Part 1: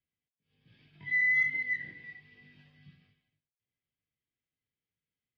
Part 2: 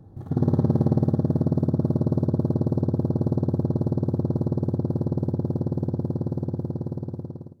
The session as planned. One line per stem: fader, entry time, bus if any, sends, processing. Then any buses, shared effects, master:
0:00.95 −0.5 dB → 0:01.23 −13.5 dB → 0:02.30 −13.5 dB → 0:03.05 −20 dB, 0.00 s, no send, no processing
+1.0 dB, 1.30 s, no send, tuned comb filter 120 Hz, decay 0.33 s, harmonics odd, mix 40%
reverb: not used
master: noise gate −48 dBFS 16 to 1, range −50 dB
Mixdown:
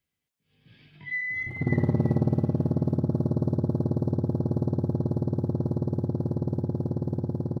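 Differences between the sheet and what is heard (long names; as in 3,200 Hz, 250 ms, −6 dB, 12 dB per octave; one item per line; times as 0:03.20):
stem 1 −0.5 dB → +7.5 dB
master: missing noise gate −48 dBFS 16 to 1, range −50 dB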